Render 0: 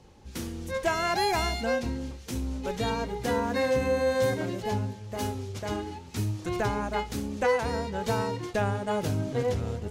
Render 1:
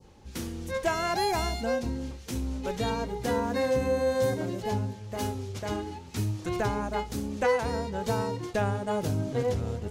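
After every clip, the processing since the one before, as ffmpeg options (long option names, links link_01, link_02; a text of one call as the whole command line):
ffmpeg -i in.wav -af "adynamicequalizer=threshold=0.00631:dfrequency=2200:dqfactor=0.72:tfrequency=2200:tqfactor=0.72:attack=5:release=100:ratio=0.375:range=3:mode=cutabove:tftype=bell" out.wav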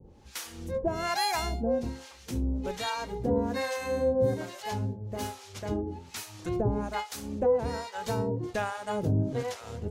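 ffmpeg -i in.wav -filter_complex "[0:a]acrossover=split=700[link_01][link_02];[link_01]aeval=exprs='val(0)*(1-1/2+1/2*cos(2*PI*1.2*n/s))':channel_layout=same[link_03];[link_02]aeval=exprs='val(0)*(1-1/2-1/2*cos(2*PI*1.2*n/s))':channel_layout=same[link_04];[link_03][link_04]amix=inputs=2:normalize=0,volume=3.5dB" out.wav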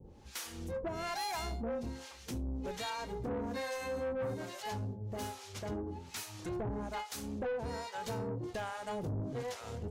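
ffmpeg -i in.wav -filter_complex "[0:a]asplit=2[link_01][link_02];[link_02]acompressor=threshold=-35dB:ratio=6,volume=2.5dB[link_03];[link_01][link_03]amix=inputs=2:normalize=0,asoftclip=type=tanh:threshold=-24dB,volume=-8.5dB" out.wav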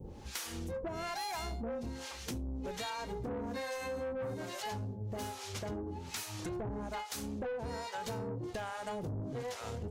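ffmpeg -i in.wav -af "acompressor=threshold=-46dB:ratio=4,volume=7.5dB" out.wav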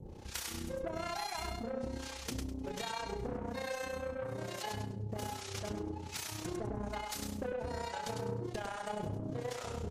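ffmpeg -i in.wav -filter_complex "[0:a]tremolo=f=31:d=0.667,asplit=2[link_01][link_02];[link_02]aecho=0:1:102|204|306:0.562|0.146|0.038[link_03];[link_01][link_03]amix=inputs=2:normalize=0,volume=2dB" -ar 44100 -c:a libmp3lame -b:a 56k out.mp3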